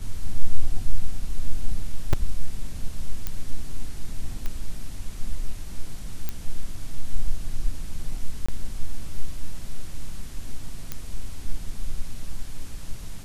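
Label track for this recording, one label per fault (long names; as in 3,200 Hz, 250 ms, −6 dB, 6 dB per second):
2.130000	2.130000	drop-out 4.2 ms
3.270000	3.270000	click −13 dBFS
4.460000	4.460000	click −16 dBFS
6.290000	6.290000	click −13 dBFS
8.460000	8.480000	drop-out 25 ms
10.920000	10.920000	click −14 dBFS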